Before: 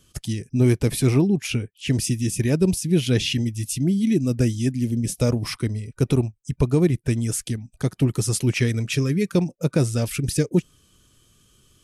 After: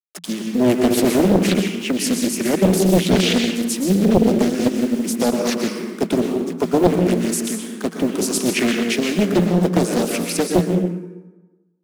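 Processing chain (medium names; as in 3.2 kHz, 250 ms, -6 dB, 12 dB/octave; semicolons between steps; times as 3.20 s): send-on-delta sampling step -38.5 dBFS; Chebyshev high-pass 170 Hz, order 10; plate-style reverb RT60 1.2 s, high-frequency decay 0.6×, pre-delay 105 ms, DRR 2 dB; loudspeaker Doppler distortion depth 0.96 ms; trim +5 dB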